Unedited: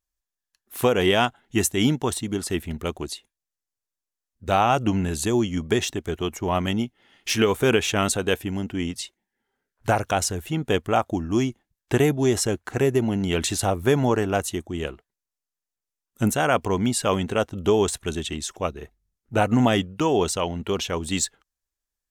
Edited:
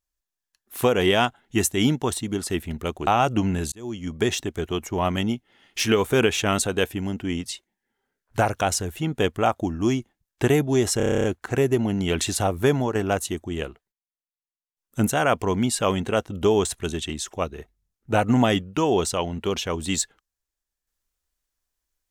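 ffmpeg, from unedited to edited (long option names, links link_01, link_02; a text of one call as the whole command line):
ffmpeg -i in.wav -filter_complex "[0:a]asplit=15[link_01][link_02][link_03][link_04][link_05][link_06][link_07][link_08][link_09][link_10][link_11][link_12][link_13][link_14][link_15];[link_01]atrim=end=3.072[link_16];[link_02]atrim=start=4.568:end=5.22,asetpts=PTS-STARTPTS,afade=type=out:start_time=0.648:duration=0.004:curve=hsin[link_17];[link_03]atrim=start=5.22:end=12.502,asetpts=PTS-STARTPTS,afade=type=in:duration=0.57[link_18];[link_04]atrim=start=12.468:end=12.502[link_19];[link_05]atrim=start=12.468:end=12.502[link_20];[link_06]atrim=start=12.468:end=12.502[link_21];[link_07]atrim=start=12.468:end=12.502[link_22];[link_08]atrim=start=12.468:end=12.502[link_23];[link_09]atrim=start=12.468:end=12.502[link_24];[link_10]atrim=start=12.468:end=12.502[link_25];[link_11]atrim=start=12.468:end=12.502[link_26];[link_12]atrim=start=12.468:end=14.18,asetpts=PTS-STARTPTS,afade=type=out:start_time=1.462:duration=0.25:silence=0.421697[link_27];[link_13]atrim=start=14.18:end=15.15,asetpts=PTS-STARTPTS,afade=type=in:duration=0.004:curve=hsin:silence=0.421697,afade=type=out:start_time=0.65:duration=0.32:curve=log:silence=0.0749894[link_28];[link_14]atrim=start=15.15:end=16,asetpts=PTS-STARTPTS,volume=-22.5dB[link_29];[link_15]atrim=start=16,asetpts=PTS-STARTPTS,afade=type=in:duration=0.32:curve=log:silence=0.0749894[link_30];[link_17][link_18]concat=n=2:v=0:a=1[link_31];[link_16][link_31]acrossfade=duration=0.004:curve1=hsin:curve2=hsin[link_32];[link_32][link_19]acrossfade=duration=0.004:curve1=hsin:curve2=hsin[link_33];[link_33][link_20]acrossfade=duration=0.004:curve1=hsin:curve2=hsin[link_34];[link_34][link_21]acrossfade=duration=0.004:curve1=hsin:curve2=hsin[link_35];[link_35][link_22]acrossfade=duration=0.004:curve1=hsin:curve2=hsin[link_36];[link_36][link_23]acrossfade=duration=0.004:curve1=hsin:curve2=hsin[link_37];[link_37][link_24]acrossfade=duration=0.004:curve1=hsin:curve2=hsin[link_38];[link_38][link_25]acrossfade=duration=0.004:curve1=hsin:curve2=hsin[link_39];[link_39][link_26]acrossfade=duration=0.004:curve1=hsin:curve2=hsin[link_40];[link_27][link_28][link_29][link_30]concat=n=4:v=0:a=1[link_41];[link_40][link_41]acrossfade=duration=0.004:curve1=hsin:curve2=hsin" out.wav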